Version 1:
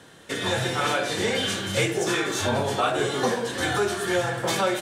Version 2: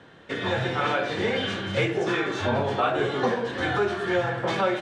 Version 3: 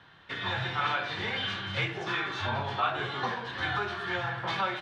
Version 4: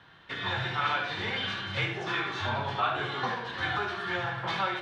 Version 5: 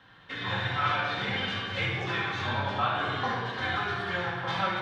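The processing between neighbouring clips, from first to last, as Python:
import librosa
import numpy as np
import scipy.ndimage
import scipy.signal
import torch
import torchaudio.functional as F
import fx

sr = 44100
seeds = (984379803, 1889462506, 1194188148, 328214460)

y1 = scipy.signal.sosfilt(scipy.signal.butter(2, 2900.0, 'lowpass', fs=sr, output='sos'), x)
y2 = fx.graphic_eq_10(y1, sr, hz=(250, 500, 1000, 4000, 8000), db=(-8, -11, 4, 5, -10))
y2 = y2 * librosa.db_to_amplitude(-3.5)
y3 = y2 + 10.0 ** (-8.5 / 20.0) * np.pad(y2, (int(75 * sr / 1000.0), 0))[:len(y2)]
y4 = fx.room_shoebox(y3, sr, seeds[0], volume_m3=1900.0, walls='mixed', distance_m=2.1)
y4 = y4 * librosa.db_to_amplitude(-2.5)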